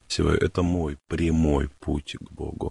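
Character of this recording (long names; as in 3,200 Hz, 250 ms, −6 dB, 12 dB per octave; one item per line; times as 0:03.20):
tremolo triangle 0.76 Hz, depth 80%
a quantiser's noise floor 10 bits, dither none
Ogg Vorbis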